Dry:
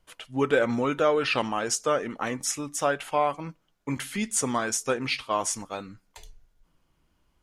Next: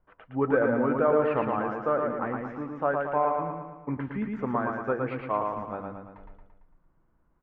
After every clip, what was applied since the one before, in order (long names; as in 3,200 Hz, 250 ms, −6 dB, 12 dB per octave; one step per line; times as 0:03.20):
low-pass filter 1,600 Hz 24 dB per octave
on a send: repeating echo 113 ms, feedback 53%, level −3.5 dB
on the sum: level −1.5 dB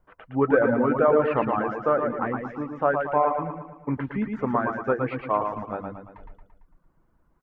reverb reduction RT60 0.51 s
level +4.5 dB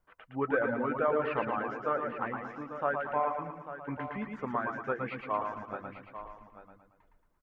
tilt shelving filter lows −5.5 dB, about 1,300 Hz
on a send: single-tap delay 843 ms −12 dB
on the sum: level −6 dB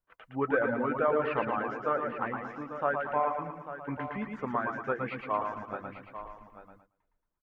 noise gate −59 dBFS, range −14 dB
level +1.5 dB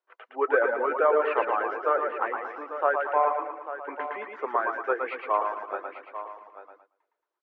elliptic high-pass filter 360 Hz, stop band 70 dB
high-frequency loss of the air 180 metres
level +6.5 dB